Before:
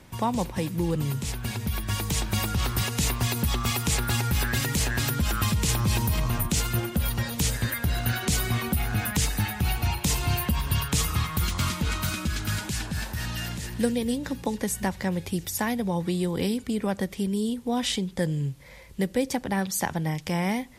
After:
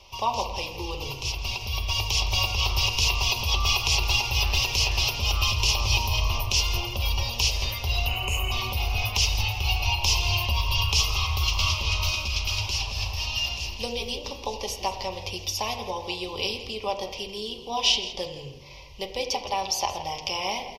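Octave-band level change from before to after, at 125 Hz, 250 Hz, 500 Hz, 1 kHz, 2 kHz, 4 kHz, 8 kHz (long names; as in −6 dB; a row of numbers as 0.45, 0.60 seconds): −3.0, −15.0, −2.0, +2.5, +3.5, +9.0, 0.0 decibels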